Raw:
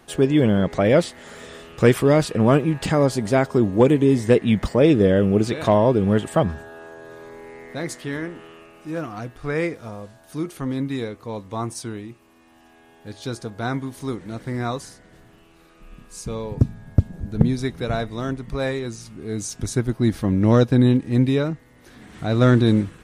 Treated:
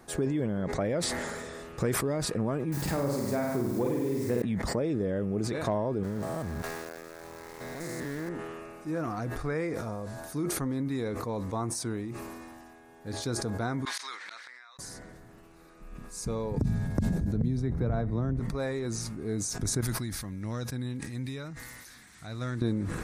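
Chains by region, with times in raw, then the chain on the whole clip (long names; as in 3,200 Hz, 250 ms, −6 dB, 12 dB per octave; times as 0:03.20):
0:02.72–0:04.42: flutter between parallel walls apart 8.5 metres, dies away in 0.95 s + bit-depth reduction 6 bits, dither triangular
0:06.03–0:08.29: spectrum averaged block by block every 200 ms + downward compressor 2.5 to 1, threshold −29 dBFS + centre clipping without the shift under −37.5 dBFS
0:13.85–0:14.79: flat-topped band-pass 2,400 Hz, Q 0.79 + spectral tilt +3 dB per octave + gate with flip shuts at −37 dBFS, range −30 dB
0:16.56–0:18.40: high-pass filter 44 Hz + spectral tilt −2.5 dB per octave + multiband upward and downward compressor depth 100%
0:19.81–0:22.62: guitar amp tone stack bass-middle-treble 5-5-5 + one half of a high-frequency compander encoder only
whole clip: downward compressor 6 to 1, threshold −26 dBFS; parametric band 3,000 Hz −11 dB 0.55 octaves; level that may fall only so fast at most 25 dB per second; level −2 dB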